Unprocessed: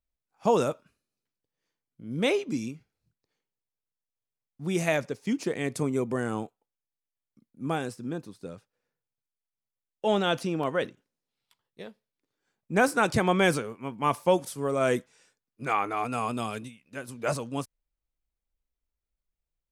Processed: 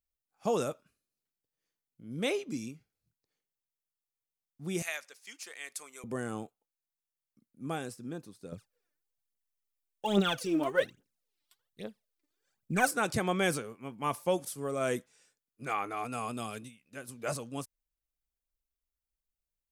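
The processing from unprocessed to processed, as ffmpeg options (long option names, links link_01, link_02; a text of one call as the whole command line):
ffmpeg -i in.wav -filter_complex "[0:a]asettb=1/sr,asplit=3[link_01][link_02][link_03];[link_01]atrim=end=4.824[link_04];[link_02]atrim=start=4.82:end=6.04,asetpts=PTS-STARTPTS,afade=type=in:duration=0.004:curve=qsin,afade=type=out:start_time=1.216:duration=0.004:curve=qsin,highpass=1300[link_05];[link_03]atrim=start=6.036[link_06];[link_04][link_05]acrossfade=duration=0.004:curve1=hsin:curve2=qsin[link_07];[link_07][link_06]acrossfade=duration=0.004:curve1=qsin:curve2=hsin,asettb=1/sr,asplit=3[link_08][link_09][link_10];[link_08]atrim=end=8.524[link_11];[link_09]atrim=start=8.52:end=12.91,asetpts=PTS-STARTPTS,afade=type=in:duration=0.004:curve=qsin,afade=type=out:start_time=4.386:duration=0.004:curve=qsin,aphaser=in_gain=1:out_gain=1:delay=3.5:decay=0.74:speed=1.2:type=triangular[link_12];[link_10]atrim=start=12.906[link_13];[link_11][link_12]acrossfade=duration=0.004:curve1=hsin:curve2=qsin[link_14];[link_14][link_13]acrossfade=duration=0.004:curve1=qsin:curve2=hsin,highshelf=frequency=6800:gain=9,bandreject=frequency=950:width=13,volume=-6.5dB" out.wav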